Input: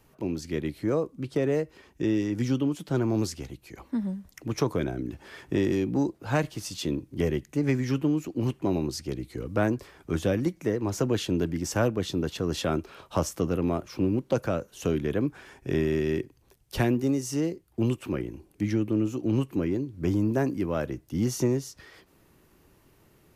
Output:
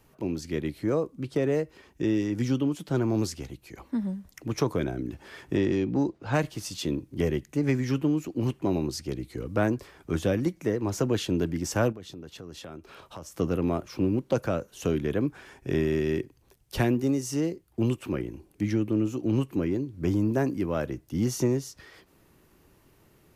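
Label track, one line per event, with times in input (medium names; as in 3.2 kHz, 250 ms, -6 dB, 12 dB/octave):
5.570000	6.340000	low-pass 5.4 kHz
11.920000	13.390000	compression 3:1, threshold -43 dBFS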